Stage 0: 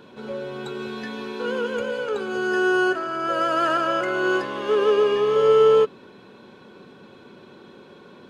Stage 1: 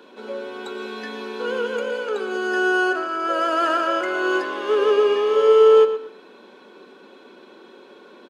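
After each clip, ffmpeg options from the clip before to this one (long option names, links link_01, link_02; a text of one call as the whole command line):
ffmpeg -i in.wav -filter_complex "[0:a]highpass=frequency=260:width=0.5412,highpass=frequency=260:width=1.3066,asplit=2[link_01][link_02];[link_02]adelay=118,lowpass=frequency=4500:poles=1,volume=-10.5dB,asplit=2[link_03][link_04];[link_04]adelay=118,lowpass=frequency=4500:poles=1,volume=0.25,asplit=2[link_05][link_06];[link_06]adelay=118,lowpass=frequency=4500:poles=1,volume=0.25[link_07];[link_03][link_05][link_07]amix=inputs=3:normalize=0[link_08];[link_01][link_08]amix=inputs=2:normalize=0,volume=1dB" out.wav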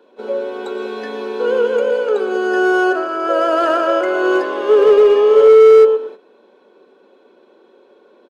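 ffmpeg -i in.wav -af "asoftclip=type=hard:threshold=-14dB,equalizer=frequency=530:width_type=o:width=1.6:gain=10.5,agate=range=-11dB:threshold=-31dB:ratio=16:detection=peak" out.wav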